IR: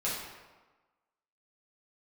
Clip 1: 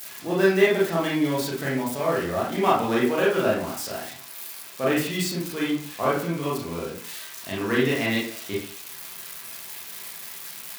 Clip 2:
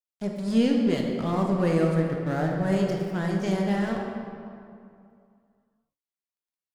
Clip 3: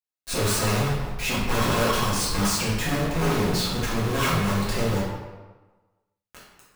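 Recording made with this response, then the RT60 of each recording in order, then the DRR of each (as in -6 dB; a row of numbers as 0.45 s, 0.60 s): 3; 0.45 s, 2.4 s, 1.3 s; -6.0 dB, 0.0 dB, -8.0 dB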